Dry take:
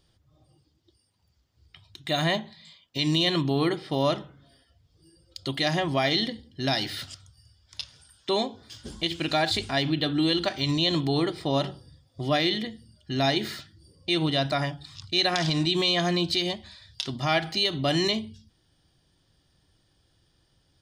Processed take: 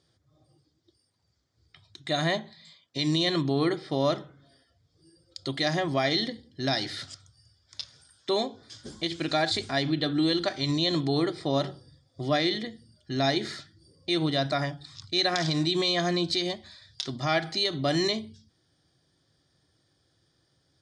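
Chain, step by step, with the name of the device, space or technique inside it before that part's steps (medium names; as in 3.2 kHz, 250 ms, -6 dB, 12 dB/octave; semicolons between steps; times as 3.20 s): car door speaker (cabinet simulation 110–8800 Hz, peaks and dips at 200 Hz -5 dB, 910 Hz -5 dB, 2.8 kHz -10 dB)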